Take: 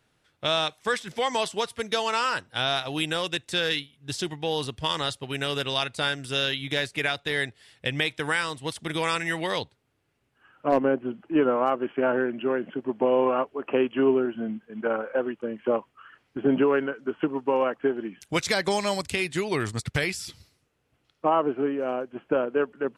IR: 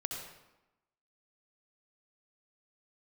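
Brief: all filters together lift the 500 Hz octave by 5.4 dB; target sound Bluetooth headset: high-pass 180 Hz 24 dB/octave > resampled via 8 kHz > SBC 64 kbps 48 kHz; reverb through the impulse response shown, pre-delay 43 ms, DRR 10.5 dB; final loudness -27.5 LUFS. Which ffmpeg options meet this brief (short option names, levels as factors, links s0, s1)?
-filter_complex "[0:a]equalizer=f=500:t=o:g=6.5,asplit=2[s0][s1];[1:a]atrim=start_sample=2205,adelay=43[s2];[s1][s2]afir=irnorm=-1:irlink=0,volume=0.251[s3];[s0][s3]amix=inputs=2:normalize=0,highpass=f=180:w=0.5412,highpass=f=180:w=1.3066,aresample=8000,aresample=44100,volume=0.596" -ar 48000 -c:a sbc -b:a 64k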